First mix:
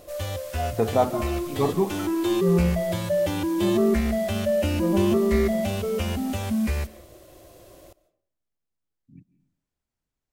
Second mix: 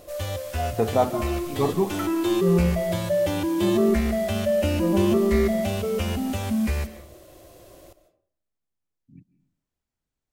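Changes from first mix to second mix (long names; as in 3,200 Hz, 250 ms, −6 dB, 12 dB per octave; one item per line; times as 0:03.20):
first sound: send +7.0 dB
second sound +7.5 dB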